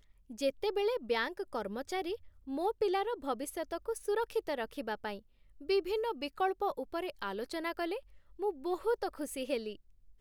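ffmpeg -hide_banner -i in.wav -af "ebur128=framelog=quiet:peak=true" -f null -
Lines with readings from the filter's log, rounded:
Integrated loudness:
  I:         -35.9 LUFS
  Threshold: -46.1 LUFS
Loudness range:
  LRA:         2.0 LU
  Threshold: -56.2 LUFS
  LRA low:   -37.2 LUFS
  LRA high:  -35.3 LUFS
True peak:
  Peak:      -18.9 dBFS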